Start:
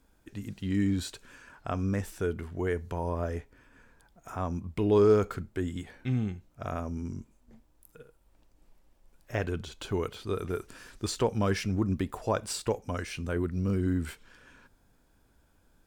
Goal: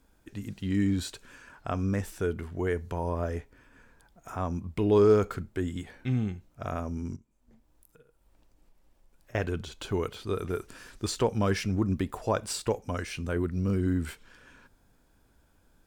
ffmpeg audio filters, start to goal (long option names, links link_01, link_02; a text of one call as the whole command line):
ffmpeg -i in.wav -filter_complex "[0:a]asettb=1/sr,asplit=3[link_01][link_02][link_03];[link_01]atrim=end=7.164[link_04];[link_02]atrim=start=7.16:end=9.35,asetpts=PTS-STARTPTS,afade=type=in:duration=0.004:curve=qsin,afade=type=out:start_time=2.186:duration=0.004:curve=qsin,acompressor=threshold=-57dB:ratio=4[link_05];[link_03]atrim=start=9.346[link_06];[link_04][link_05]acrossfade=duration=0.004:curve1=hsin:curve2=qsin[link_07];[link_07][link_06]acrossfade=duration=0.004:curve1=qsin:curve2=hsin,volume=1dB" out.wav